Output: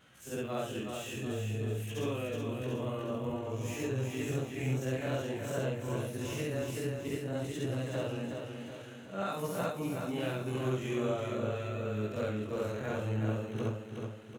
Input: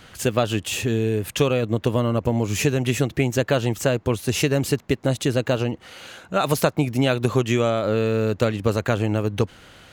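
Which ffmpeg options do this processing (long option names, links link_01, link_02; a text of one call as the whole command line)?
ffmpeg -i in.wav -filter_complex "[0:a]afftfilt=real='re':imag='-im':win_size=4096:overlap=0.75,highpass=frequency=73:width=0.5412,highpass=frequency=73:width=1.3066,equalizer=frequency=4600:width_type=o:width=0.29:gain=-9.5,atempo=0.69,acrossover=split=110|2300[link_01][link_02][link_03];[link_03]volume=34.5dB,asoftclip=hard,volume=-34.5dB[link_04];[link_01][link_02][link_04]amix=inputs=3:normalize=0,flanger=delay=16.5:depth=7.2:speed=0.51,asplit=2[link_05][link_06];[link_06]aecho=0:1:372|744|1116|1488|1860|2232:0.531|0.265|0.133|0.0664|0.0332|0.0166[link_07];[link_05][link_07]amix=inputs=2:normalize=0,volume=-7dB" out.wav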